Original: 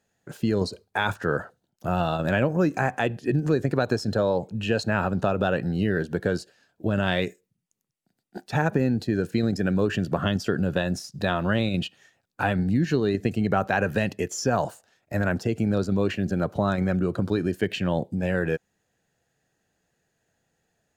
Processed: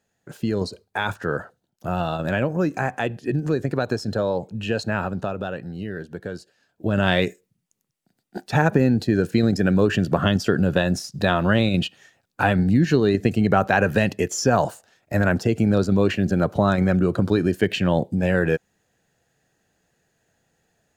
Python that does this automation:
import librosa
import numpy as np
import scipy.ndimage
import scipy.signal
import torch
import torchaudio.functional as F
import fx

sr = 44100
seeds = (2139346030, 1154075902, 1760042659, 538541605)

y = fx.gain(x, sr, db=fx.line((4.94, 0.0), (5.62, -7.0), (6.37, -7.0), (7.05, 5.0)))